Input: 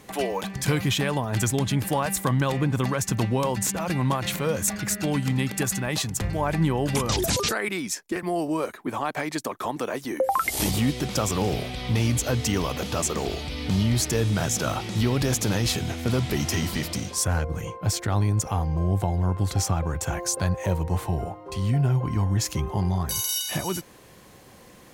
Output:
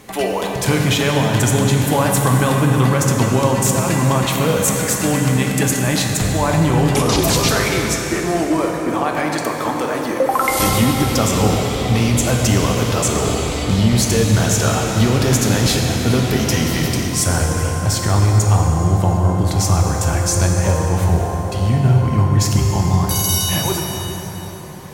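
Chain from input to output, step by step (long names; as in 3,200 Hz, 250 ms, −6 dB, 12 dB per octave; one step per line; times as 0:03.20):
dense smooth reverb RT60 4.8 s, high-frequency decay 0.65×, DRR 0 dB
level +6 dB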